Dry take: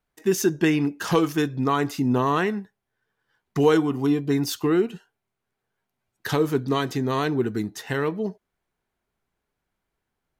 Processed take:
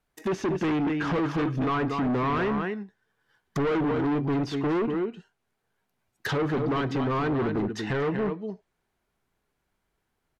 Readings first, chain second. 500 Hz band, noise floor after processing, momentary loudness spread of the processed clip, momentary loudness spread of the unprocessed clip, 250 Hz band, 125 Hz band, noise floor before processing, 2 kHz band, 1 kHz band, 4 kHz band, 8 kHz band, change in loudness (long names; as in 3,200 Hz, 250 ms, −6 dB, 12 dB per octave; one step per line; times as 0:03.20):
−4.0 dB, −79 dBFS, 8 LU, 8 LU, −3.0 dB, −2.0 dB, −82 dBFS, −2.5 dB, −2.0 dB, −6.5 dB, below −10 dB, −3.5 dB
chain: single-tap delay 238 ms −9.5 dB
hard clipping −26 dBFS, distortion −5 dB
treble cut that deepens with the level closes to 2,400 Hz, closed at −27 dBFS
level +2.5 dB